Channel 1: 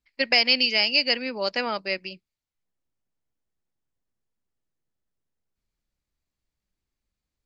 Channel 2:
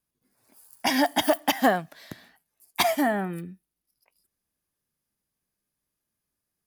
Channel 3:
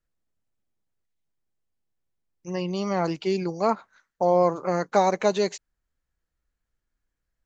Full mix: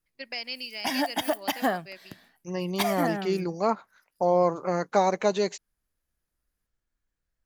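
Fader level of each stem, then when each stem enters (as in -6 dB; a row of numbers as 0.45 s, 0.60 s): -15.5 dB, -5.0 dB, -2.0 dB; 0.00 s, 0.00 s, 0.00 s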